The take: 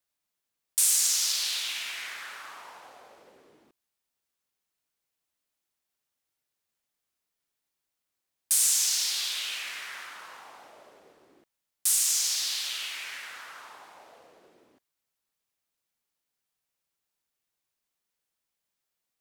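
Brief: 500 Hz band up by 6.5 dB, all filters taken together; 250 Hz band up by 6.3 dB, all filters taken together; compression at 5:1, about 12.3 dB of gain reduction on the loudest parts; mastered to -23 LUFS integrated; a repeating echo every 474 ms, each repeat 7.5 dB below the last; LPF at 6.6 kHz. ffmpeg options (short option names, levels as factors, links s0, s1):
-af "lowpass=6600,equalizer=f=250:t=o:g=5.5,equalizer=f=500:t=o:g=7,acompressor=threshold=0.0112:ratio=5,aecho=1:1:474|948|1422|1896|2370:0.422|0.177|0.0744|0.0312|0.0131,volume=7.08"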